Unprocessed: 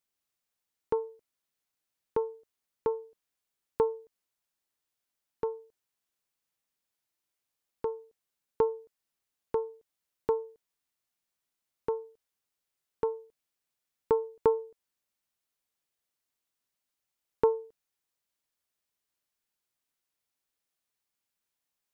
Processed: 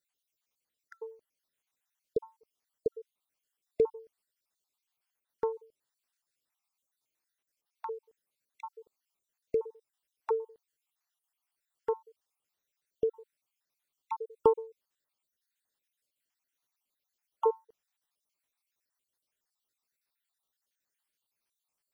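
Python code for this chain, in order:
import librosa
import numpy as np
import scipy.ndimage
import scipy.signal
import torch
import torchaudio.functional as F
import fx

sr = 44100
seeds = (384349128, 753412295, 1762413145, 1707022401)

y = fx.spec_dropout(x, sr, seeds[0], share_pct=56)
y = fx.low_shelf(y, sr, hz=310.0, db=-6.0)
y = F.gain(torch.from_numpy(y), 3.0).numpy()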